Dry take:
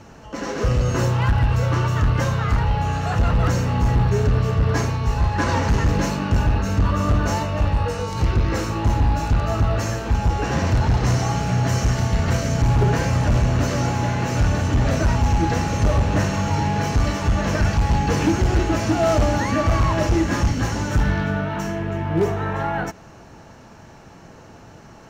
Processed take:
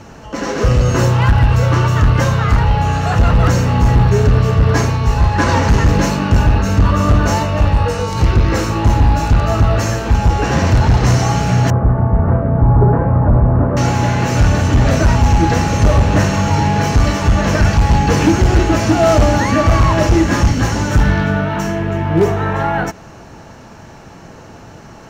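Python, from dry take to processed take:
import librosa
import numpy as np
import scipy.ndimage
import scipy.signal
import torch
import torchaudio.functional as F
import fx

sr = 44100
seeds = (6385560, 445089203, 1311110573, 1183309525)

y = fx.lowpass(x, sr, hz=1200.0, slope=24, at=(11.7, 13.77))
y = F.gain(torch.from_numpy(y), 7.0).numpy()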